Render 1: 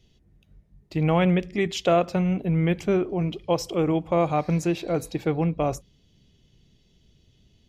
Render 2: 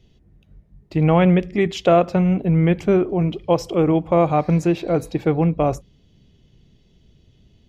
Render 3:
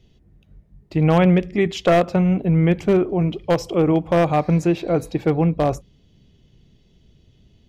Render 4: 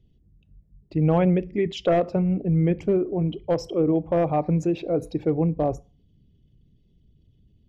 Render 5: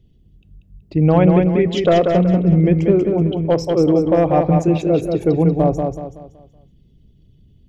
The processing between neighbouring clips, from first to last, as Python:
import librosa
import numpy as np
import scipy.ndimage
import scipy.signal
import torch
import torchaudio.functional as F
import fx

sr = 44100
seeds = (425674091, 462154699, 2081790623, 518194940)

y1 = fx.high_shelf(x, sr, hz=2900.0, db=-9.0)
y1 = y1 * librosa.db_to_amplitude(6.0)
y2 = np.minimum(y1, 2.0 * 10.0 ** (-9.5 / 20.0) - y1)
y3 = fx.envelope_sharpen(y2, sr, power=1.5)
y3 = fx.rev_fdn(y3, sr, rt60_s=0.36, lf_ratio=0.75, hf_ratio=0.9, size_ms=20.0, drr_db=18.0)
y3 = y3 * librosa.db_to_amplitude(-4.5)
y4 = fx.echo_feedback(y3, sr, ms=188, feedback_pct=37, wet_db=-4.5)
y4 = y4 * librosa.db_to_amplitude(6.5)